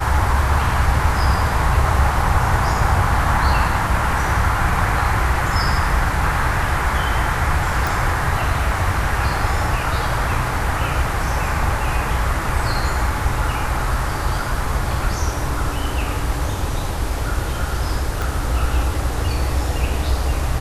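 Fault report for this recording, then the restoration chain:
0:07.87: click
0:18.22: click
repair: click removal

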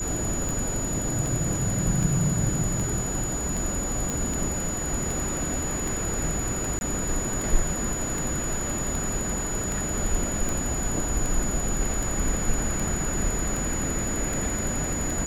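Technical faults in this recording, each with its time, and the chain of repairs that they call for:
scratch tick 78 rpm
whistle 6,900 Hz −30 dBFS
0:04.10: click
0:06.79–0:06.81: drop-out 21 ms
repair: click removal
notch filter 6,900 Hz, Q 30
repair the gap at 0:06.79, 21 ms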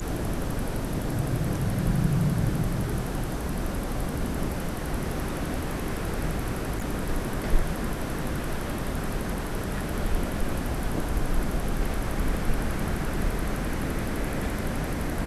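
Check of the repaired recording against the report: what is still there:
none of them is left

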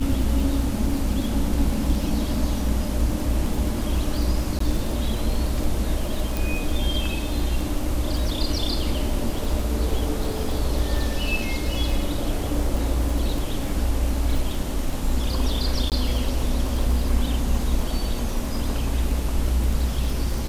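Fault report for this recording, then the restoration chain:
surface crackle 31 per second −26 dBFS
0:04.59–0:04.60: drop-out 14 ms
0:06.37: click
0:15.90–0:15.92: drop-out 18 ms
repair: click removal
repair the gap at 0:04.59, 14 ms
repair the gap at 0:15.90, 18 ms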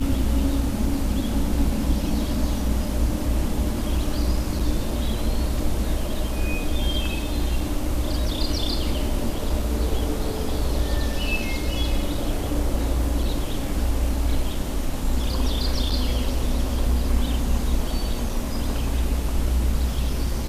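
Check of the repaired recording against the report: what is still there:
none of them is left

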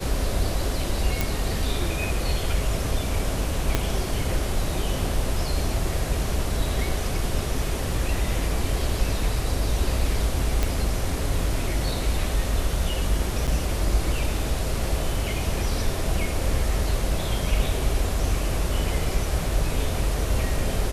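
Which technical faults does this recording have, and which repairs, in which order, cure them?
0:01.21: click
0:03.75: click −6 dBFS
0:10.63: click
0:13.47–0:13.48: drop-out 7.3 ms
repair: click removal
repair the gap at 0:13.47, 7.3 ms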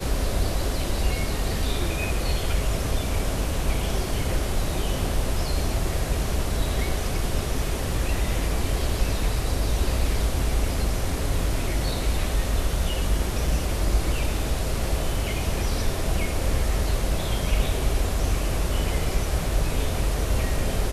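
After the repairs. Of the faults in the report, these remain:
0:03.75: click

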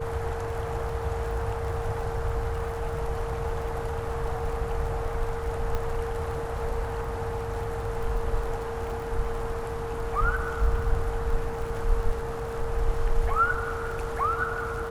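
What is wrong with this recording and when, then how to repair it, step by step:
surface crackle 31 per second −35 dBFS
whistle 460 Hz −33 dBFS
0:05.75: click −17 dBFS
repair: click removal
notch filter 460 Hz, Q 30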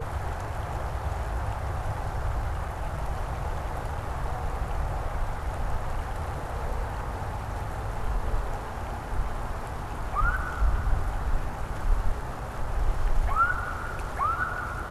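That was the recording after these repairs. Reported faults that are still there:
0:05.75: click

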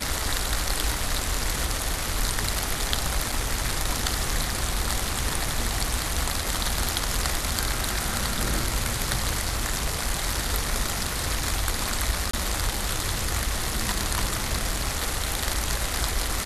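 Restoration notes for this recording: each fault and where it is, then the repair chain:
0:03.32: drop-out 4.4 ms
0:12.31–0:12.33: drop-out 24 ms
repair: repair the gap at 0:03.32, 4.4 ms
repair the gap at 0:12.31, 24 ms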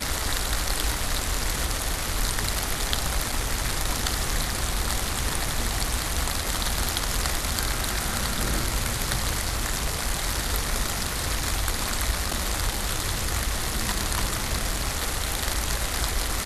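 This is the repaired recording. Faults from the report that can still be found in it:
none of them is left

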